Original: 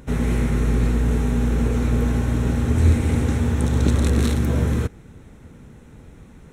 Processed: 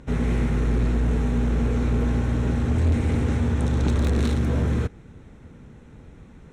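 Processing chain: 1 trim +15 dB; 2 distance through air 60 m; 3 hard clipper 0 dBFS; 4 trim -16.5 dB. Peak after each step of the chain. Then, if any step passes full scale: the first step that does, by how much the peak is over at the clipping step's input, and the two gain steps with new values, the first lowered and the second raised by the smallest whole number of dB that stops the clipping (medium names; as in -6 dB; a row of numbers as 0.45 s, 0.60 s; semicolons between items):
+9.5 dBFS, +9.5 dBFS, 0.0 dBFS, -16.5 dBFS; step 1, 9.5 dB; step 1 +5 dB, step 4 -6.5 dB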